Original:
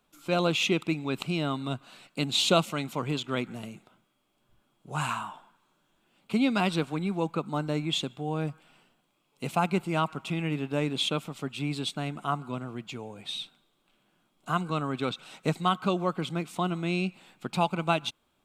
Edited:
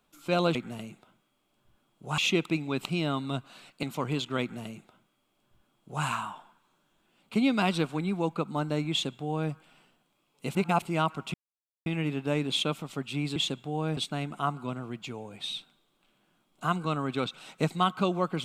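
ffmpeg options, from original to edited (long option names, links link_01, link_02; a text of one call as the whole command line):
ffmpeg -i in.wav -filter_complex "[0:a]asplit=9[link_01][link_02][link_03][link_04][link_05][link_06][link_07][link_08][link_09];[link_01]atrim=end=0.552[link_10];[link_02]atrim=start=3.388:end=5.022[link_11];[link_03]atrim=start=0.548:end=2.202[link_12];[link_04]atrim=start=2.808:end=9.532[link_13];[link_05]atrim=start=9.528:end=9.802,asetpts=PTS-STARTPTS,areverse[link_14];[link_06]atrim=start=9.798:end=10.32,asetpts=PTS-STARTPTS,afade=type=out:start_time=0.518:duration=0.004:curve=hsin,apad=pad_dur=0.52[link_15];[link_07]atrim=start=10.32:end=11.822,asetpts=PTS-STARTPTS,afade=type=in:duration=0.004:curve=hsin[link_16];[link_08]atrim=start=7.888:end=8.502[link_17];[link_09]atrim=start=11.818[link_18];[link_10][link_11]acrossfade=duration=0.004:curve1=hsin:curve2=hsin[link_19];[link_19][link_12]acrossfade=duration=0.004:curve1=hsin:curve2=hsin[link_20];[link_20][link_13]acrossfade=duration=0.004:curve1=hsin:curve2=hsin[link_21];[link_21][link_14]acrossfade=duration=0.004:curve1=hsin:curve2=hsin[link_22];[link_15][link_16]concat=n=2:v=0:a=1[link_23];[link_22][link_23]acrossfade=duration=0.004:curve1=hsin:curve2=hsin[link_24];[link_24][link_17]acrossfade=duration=0.004:curve1=hsin:curve2=hsin[link_25];[link_25][link_18]acrossfade=duration=0.004:curve1=hsin:curve2=hsin" out.wav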